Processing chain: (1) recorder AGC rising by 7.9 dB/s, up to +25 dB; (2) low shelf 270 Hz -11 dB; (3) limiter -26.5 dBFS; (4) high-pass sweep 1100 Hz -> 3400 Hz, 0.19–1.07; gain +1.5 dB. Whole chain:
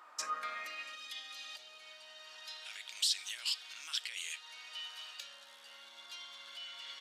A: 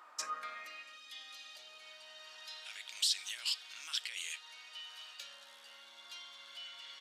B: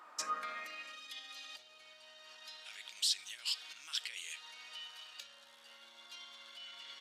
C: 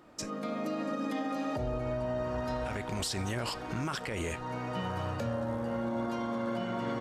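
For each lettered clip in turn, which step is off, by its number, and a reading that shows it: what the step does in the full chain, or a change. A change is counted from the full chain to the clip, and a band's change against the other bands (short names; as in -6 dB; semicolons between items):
1, 8 kHz band +2.0 dB; 2, 2 kHz band -1.5 dB; 4, 500 Hz band +25.5 dB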